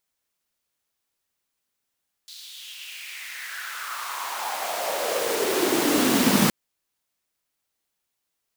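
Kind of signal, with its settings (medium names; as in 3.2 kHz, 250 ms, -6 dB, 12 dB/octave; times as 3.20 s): swept filtered noise pink, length 4.22 s highpass, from 4.2 kHz, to 190 Hz, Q 4.4, exponential, gain ramp +23 dB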